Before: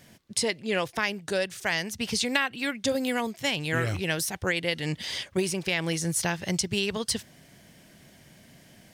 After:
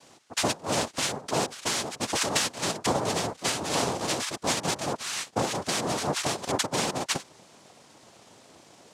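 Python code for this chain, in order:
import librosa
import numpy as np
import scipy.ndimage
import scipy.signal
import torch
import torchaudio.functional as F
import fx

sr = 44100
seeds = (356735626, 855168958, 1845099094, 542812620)

y = fx.dmg_noise_colour(x, sr, seeds[0], colour='blue', level_db=-60.0)
y = fx.noise_vocoder(y, sr, seeds[1], bands=2)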